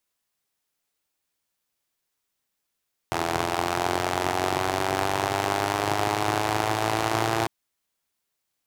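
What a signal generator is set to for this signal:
pulse-train model of a four-cylinder engine, changing speed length 4.35 s, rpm 2,500, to 3,400, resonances 130/360/710 Hz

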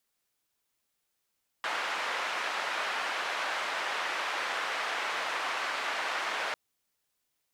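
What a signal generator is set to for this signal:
band-limited noise 720–1,900 Hz, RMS −33 dBFS 4.90 s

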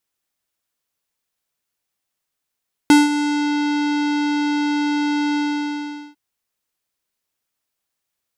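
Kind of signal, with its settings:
subtractive voice square D4 24 dB per octave, low-pass 5,800 Hz, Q 0.75, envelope 1 octave, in 0.62 s, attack 1.3 ms, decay 0.18 s, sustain −11.5 dB, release 0.79 s, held 2.46 s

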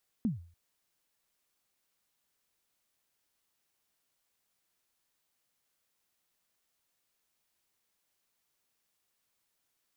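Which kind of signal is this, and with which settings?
synth kick length 0.29 s, from 250 Hz, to 85 Hz, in 145 ms, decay 0.44 s, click off, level −23.5 dB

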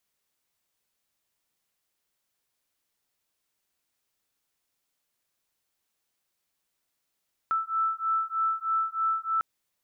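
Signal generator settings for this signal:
two tones that beat 1,320 Hz, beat 3.2 Hz, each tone −28 dBFS 1.90 s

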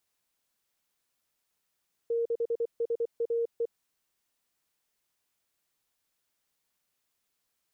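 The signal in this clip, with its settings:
Morse code "6SAE" 24 words per minute 465 Hz −25.5 dBFS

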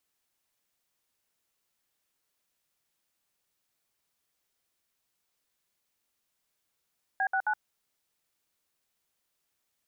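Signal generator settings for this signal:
touch tones "B69", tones 70 ms, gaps 63 ms, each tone −27.5 dBFS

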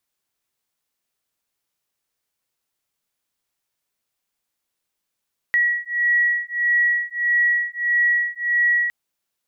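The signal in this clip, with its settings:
two tones that beat 1,920 Hz, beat 1.6 Hz, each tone −20 dBFS 3.36 s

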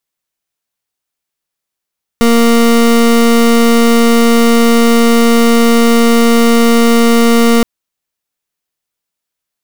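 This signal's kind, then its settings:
pulse wave 233 Hz, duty 28% −7.5 dBFS 5.42 s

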